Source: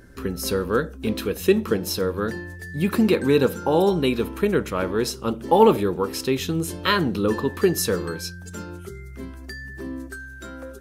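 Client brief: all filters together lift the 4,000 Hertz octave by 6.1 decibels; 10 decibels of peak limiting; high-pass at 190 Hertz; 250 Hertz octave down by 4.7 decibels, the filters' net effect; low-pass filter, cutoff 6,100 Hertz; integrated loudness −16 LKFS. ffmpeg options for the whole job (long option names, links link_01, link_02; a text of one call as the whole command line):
ffmpeg -i in.wav -af "highpass=190,lowpass=6100,equalizer=frequency=250:width_type=o:gain=-4.5,equalizer=frequency=4000:width_type=o:gain=8.5,volume=10.5dB,alimiter=limit=-3dB:level=0:latency=1" out.wav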